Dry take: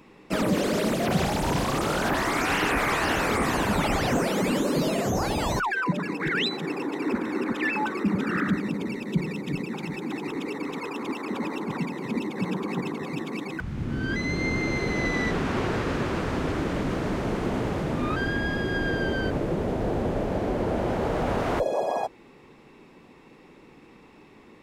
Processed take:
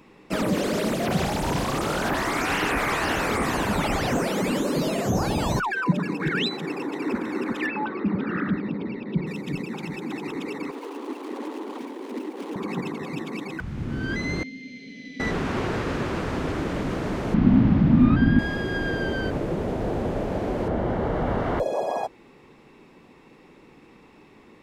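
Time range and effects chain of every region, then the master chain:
0:05.08–0:06.48: parametric band 150 Hz +5.5 dB 1.7 octaves + notch filter 2,000 Hz, Q 11
0:07.66–0:09.27: Butterworth low-pass 4,600 Hz + high-shelf EQ 2,300 Hz −8.5 dB
0:10.71–0:12.56: running median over 25 samples + Butterworth high-pass 260 Hz 48 dB per octave + parametric band 9,300 Hz +3.5 dB 0.21 octaves
0:14.43–0:15.20: formant filter i + parametric band 5,200 Hz +13 dB 1 octave + phaser with its sweep stopped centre 330 Hz, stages 6
0:17.34–0:18.39: Bessel low-pass filter 3,300 Hz, order 4 + low shelf with overshoot 320 Hz +9 dB, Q 3
0:20.68–0:21.60: bass and treble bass +3 dB, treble −13 dB + notch filter 2,500 Hz, Q 7.8
whole clip: no processing

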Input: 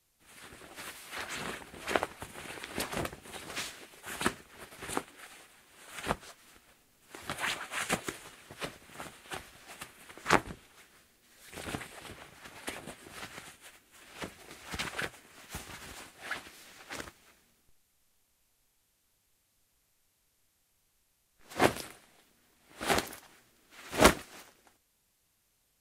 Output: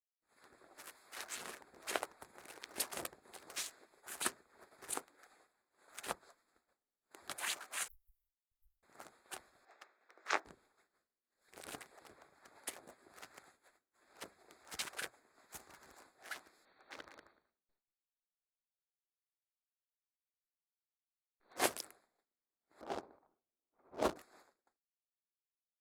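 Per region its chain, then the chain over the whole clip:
0:07.88–0:08.83: lower of the sound and its delayed copy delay 1 ms + inverse Chebyshev band-stop filter 180–6,200 Hz, stop band 60 dB
0:09.65–0:10.45: loudspeaker in its box 460–5,300 Hz, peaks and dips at 990 Hz −4 dB, 3,100 Hz −5 dB, 4,500 Hz −7 dB + double-tracking delay 18 ms −10.5 dB
0:16.65–0:21.57: linear-phase brick-wall low-pass 4,600 Hz + repeating echo 188 ms, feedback 19%, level −6 dB
0:22.81–0:24.16: running median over 25 samples + low-pass that shuts in the quiet parts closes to 2,300 Hz, open at −23 dBFS + low-pass filter 3,200 Hz 6 dB per octave
whole clip: adaptive Wiener filter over 15 samples; downward expander −58 dBFS; bass and treble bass −13 dB, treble +12 dB; level −8.5 dB

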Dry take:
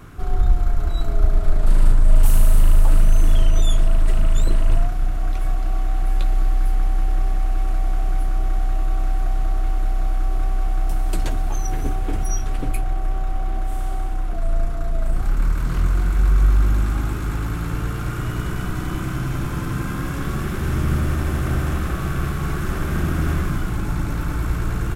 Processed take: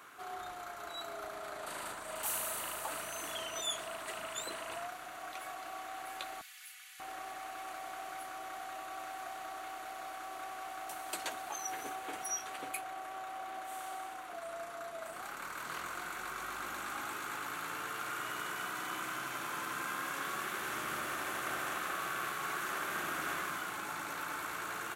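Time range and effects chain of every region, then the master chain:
0:06.41–0:07.00: four-pole ladder high-pass 1,700 Hz, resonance 25% + high-shelf EQ 3,700 Hz +6 dB + comb filter 4.1 ms, depth 54%
whole clip: high-pass filter 740 Hz 12 dB per octave; notch filter 5,200 Hz, Q 11; level −4 dB

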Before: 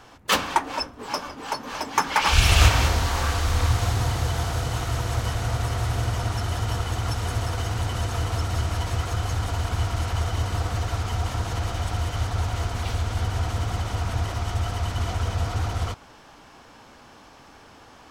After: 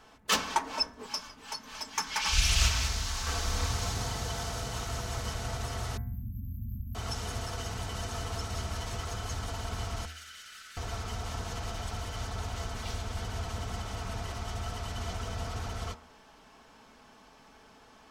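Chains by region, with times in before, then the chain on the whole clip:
0:01.06–0:03.27: parametric band 460 Hz −10.5 dB 2.9 octaves + highs frequency-modulated by the lows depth 0.25 ms
0:05.97–0:06.95: linear-phase brick-wall band-stop 280–12,000 Hz + parametric band 13,000 Hz +4 dB 0.65 octaves
0:10.05–0:10.77: elliptic high-pass filter 1,400 Hz + tube saturation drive 30 dB, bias 0.55
whole clip: comb filter 4.6 ms, depth 45%; hum removal 78.72 Hz, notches 28; dynamic equaliser 5,800 Hz, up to +7 dB, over −43 dBFS, Q 1.2; level −8 dB

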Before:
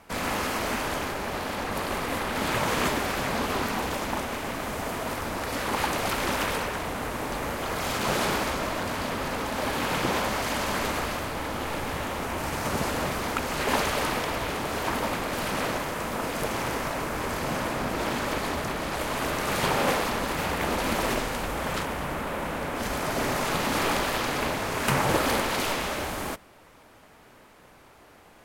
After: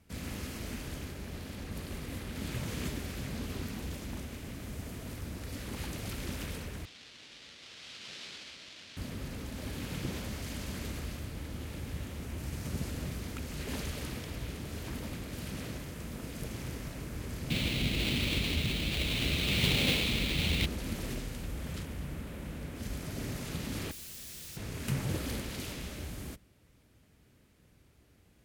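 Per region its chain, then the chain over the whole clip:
0:06.85–0:08.97: each half-wave held at its own peak + resonant band-pass 3,700 Hz, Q 1.2 + high-frequency loss of the air 61 metres
0:17.50–0:20.66: each half-wave held at its own peak + flat-topped bell 3,000 Hz +13.5 dB 1.2 octaves
0:23.91–0:24.57: high-pass filter 390 Hz + wrap-around overflow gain 30 dB
whole clip: high-pass filter 59 Hz; guitar amp tone stack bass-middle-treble 10-0-1; level +10 dB

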